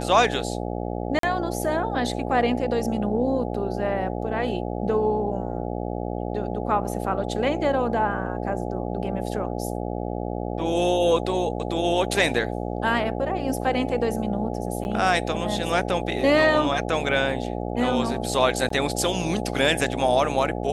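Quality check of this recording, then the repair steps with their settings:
buzz 60 Hz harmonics 14 -29 dBFS
1.19–1.23 s: dropout 43 ms
14.84–14.85 s: dropout 9.9 ms
18.69–18.70 s: dropout 14 ms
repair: de-hum 60 Hz, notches 14; interpolate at 1.19 s, 43 ms; interpolate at 14.84 s, 9.9 ms; interpolate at 18.69 s, 14 ms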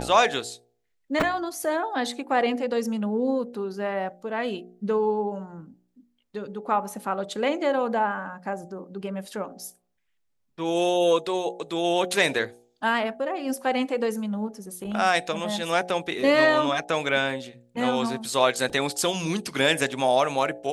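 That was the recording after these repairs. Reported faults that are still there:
nothing left

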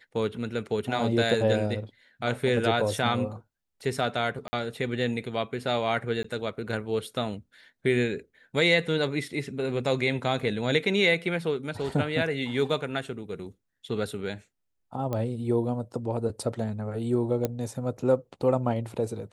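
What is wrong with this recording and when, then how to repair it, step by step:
4.48–4.53 s: dropout 50 ms
6.23–6.24 s: dropout 14 ms
15.13 s: pop -18 dBFS
17.45 s: pop -13 dBFS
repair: de-click; interpolate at 4.48 s, 50 ms; interpolate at 6.23 s, 14 ms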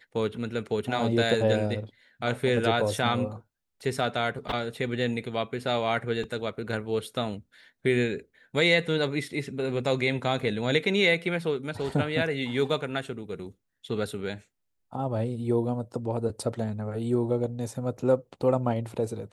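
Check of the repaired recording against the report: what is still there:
nothing left

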